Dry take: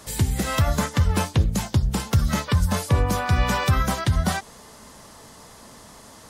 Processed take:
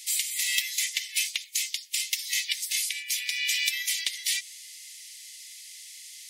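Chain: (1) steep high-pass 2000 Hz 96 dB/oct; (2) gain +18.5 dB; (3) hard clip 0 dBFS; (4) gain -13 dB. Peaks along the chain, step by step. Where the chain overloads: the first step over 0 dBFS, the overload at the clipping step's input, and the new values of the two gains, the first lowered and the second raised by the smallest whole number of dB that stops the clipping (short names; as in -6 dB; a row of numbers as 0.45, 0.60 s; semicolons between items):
-13.0, +5.5, 0.0, -13.0 dBFS; step 2, 5.5 dB; step 2 +12.5 dB, step 4 -7 dB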